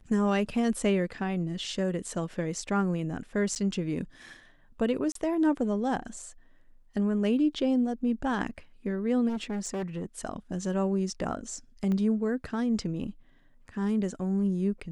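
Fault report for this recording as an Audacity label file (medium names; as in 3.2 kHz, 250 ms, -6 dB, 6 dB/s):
3.550000	3.560000	dropout 9.3 ms
5.120000	5.150000	dropout 33 ms
9.280000	10.050000	clipped -29 dBFS
11.920000	11.920000	pop -22 dBFS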